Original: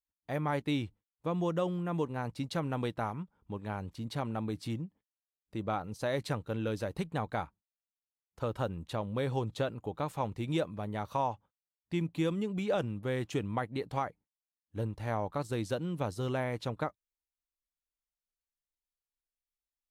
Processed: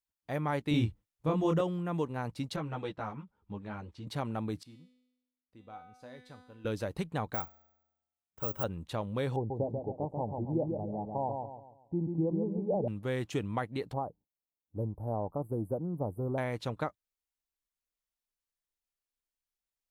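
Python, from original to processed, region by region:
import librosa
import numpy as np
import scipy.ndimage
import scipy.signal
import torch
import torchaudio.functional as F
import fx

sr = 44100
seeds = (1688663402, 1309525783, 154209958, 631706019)

y = fx.chain(x, sr, fx.low_shelf(hz=170.0, db=10.0),
    fx.doubler(ms=26.0, db=-2.5), at=(0.71, 1.61))
y = fx.chain(y, sr, fx.lowpass(hz=5500.0, slope=12),
    fx.ensemble(), at=(2.56, 4.07))
y = fx.chain(y, sr, fx.high_shelf(hz=7800.0, db=-6.5),
    fx.comb_fb(f0_hz=250.0, decay_s=0.92, harmonics='all', damping=0.0, mix_pct=90), at=(4.63, 6.65))
y = fx.chain(y, sr, fx.resample_bad(factor=2, down='filtered', up='zero_stuff'),
    fx.peak_eq(hz=4200.0, db=-13.0, octaves=0.31),
    fx.comb_fb(f0_hz=78.0, decay_s=1.0, harmonics='odd', damping=0.0, mix_pct=40), at=(7.34, 8.64))
y = fx.chain(y, sr, fx.ellip_lowpass(hz=850.0, order=4, stop_db=40),
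    fx.echo_feedback(ms=139, feedback_pct=38, wet_db=-4.5), at=(9.36, 12.88))
y = fx.chain(y, sr, fx.cheby2_bandstop(low_hz=2200.0, high_hz=6000.0, order=4, stop_db=60),
    fx.doppler_dist(depth_ms=0.12), at=(13.93, 16.38))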